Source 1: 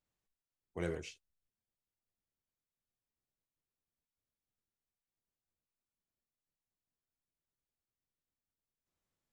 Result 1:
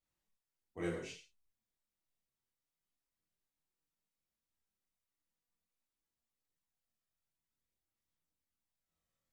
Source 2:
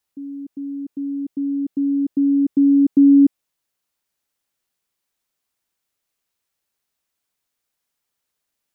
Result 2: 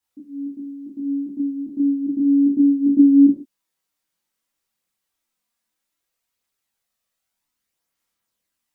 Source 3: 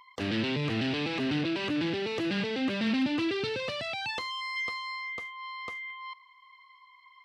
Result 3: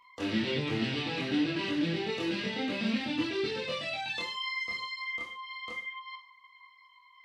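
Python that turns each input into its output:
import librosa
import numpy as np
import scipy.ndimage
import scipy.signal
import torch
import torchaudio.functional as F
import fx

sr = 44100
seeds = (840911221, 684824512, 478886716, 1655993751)

y = fx.rev_gated(x, sr, seeds[0], gate_ms=170, shape='falling', drr_db=0.0)
y = fx.dynamic_eq(y, sr, hz=1100.0, q=1.2, threshold_db=-38.0, ratio=4.0, max_db=-5)
y = fx.chorus_voices(y, sr, voices=2, hz=0.31, base_ms=25, depth_ms=4.6, mix_pct=55)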